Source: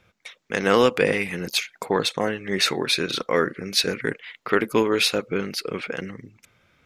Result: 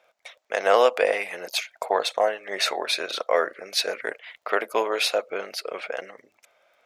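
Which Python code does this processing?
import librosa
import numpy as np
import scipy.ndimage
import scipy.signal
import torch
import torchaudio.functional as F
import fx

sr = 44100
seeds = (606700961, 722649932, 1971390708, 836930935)

y = fx.highpass_res(x, sr, hz=640.0, q=4.9)
y = fx.dmg_crackle(y, sr, seeds[0], per_s=19.0, level_db=-48.0)
y = y * librosa.db_to_amplitude(-3.5)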